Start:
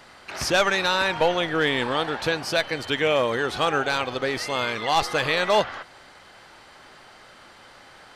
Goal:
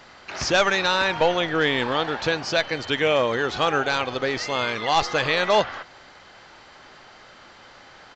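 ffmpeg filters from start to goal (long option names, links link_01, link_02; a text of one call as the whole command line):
ffmpeg -i in.wav -af "aresample=16000,aresample=44100,volume=1dB" out.wav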